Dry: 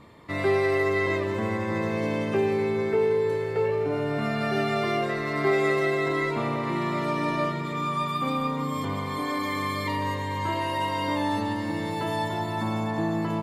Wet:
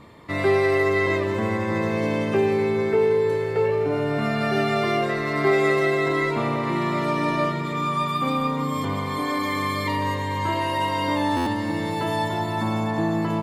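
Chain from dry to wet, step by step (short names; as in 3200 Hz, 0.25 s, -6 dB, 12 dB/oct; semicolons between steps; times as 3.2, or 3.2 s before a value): stuck buffer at 11.36, samples 512, times 8; gain +3.5 dB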